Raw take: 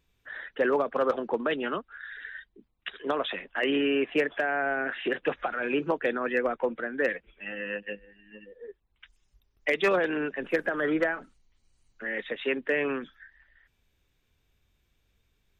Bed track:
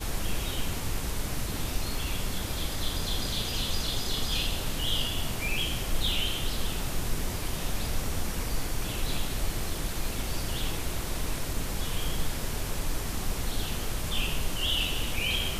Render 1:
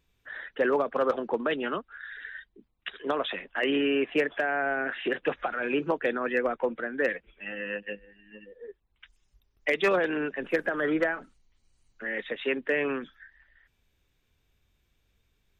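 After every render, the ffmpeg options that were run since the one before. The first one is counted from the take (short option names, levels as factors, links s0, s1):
-af anull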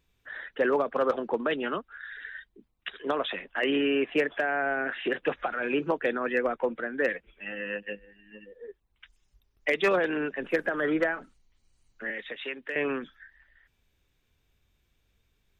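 -filter_complex "[0:a]asettb=1/sr,asplit=3[s0][s1][s2];[s0]atrim=end=12.104[s3];[s1]atrim=start=12.1:end=12.76,asetpts=PTS-STARTPTS,afade=t=in:d=0.004:c=qsin,afade=t=out:st=0.656:d=0.004:c=qsin,acrossover=split=650|1800[s4][s5][s6];[s4]acompressor=threshold=0.00794:ratio=4[s7];[s5]acompressor=threshold=0.00562:ratio=4[s8];[s6]acompressor=threshold=0.0178:ratio=4[s9];[s7][s8][s9]amix=inputs=3:normalize=0[s10];[s2]atrim=start=12.756[s11];[s3][s10]acrossfade=d=0.004:c1=hsin:c2=qsin[s12];[s12][s11]acrossfade=d=0.004:c1=qsin:c2=hsin"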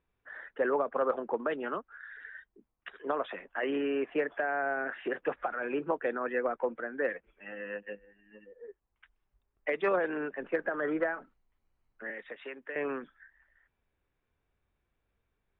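-af "lowpass=1400,lowshelf=f=370:g=-9.5"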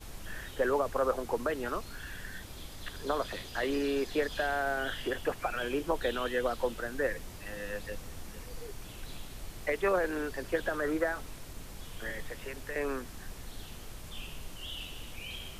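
-filter_complex "[1:a]volume=0.211[s0];[0:a][s0]amix=inputs=2:normalize=0"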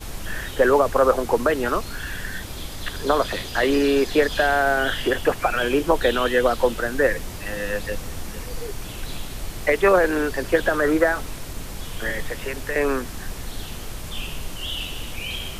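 -af "volume=3.98"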